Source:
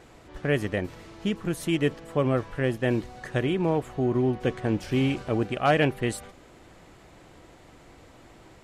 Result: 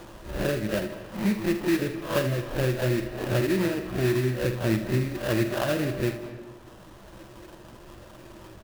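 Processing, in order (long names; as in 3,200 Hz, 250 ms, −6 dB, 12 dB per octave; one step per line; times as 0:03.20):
peak hold with a rise ahead of every peak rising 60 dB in 0.42 s
treble cut that deepens with the level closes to 420 Hz, closed at −19 dBFS
reverb reduction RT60 1.4 s
EQ curve with evenly spaced ripples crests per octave 1.3, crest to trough 11 dB
in parallel at +1.5 dB: downward compressor, threshold −36 dBFS, peak gain reduction 17 dB
on the sum: sample-rate reduction 2,200 Hz, jitter 20%
dynamic equaliser 7,100 Hz, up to −5 dB, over −53 dBFS, Q 0.83
on a send: ambience of single reflections 47 ms −10 dB, 79 ms −11 dB
on the sum: comb and all-pass reverb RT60 1.8 s, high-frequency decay 0.55×, pre-delay 115 ms, DRR 11.5 dB
level −2.5 dB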